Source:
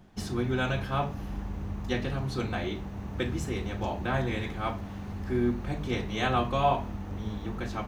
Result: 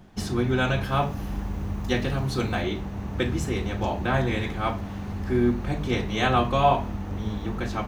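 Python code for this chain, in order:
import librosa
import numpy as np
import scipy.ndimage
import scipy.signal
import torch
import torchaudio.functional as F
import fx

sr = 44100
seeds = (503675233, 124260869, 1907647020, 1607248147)

y = fx.high_shelf(x, sr, hz=7600.0, db=6.5, at=(0.83, 2.62))
y = y * 10.0 ** (5.0 / 20.0)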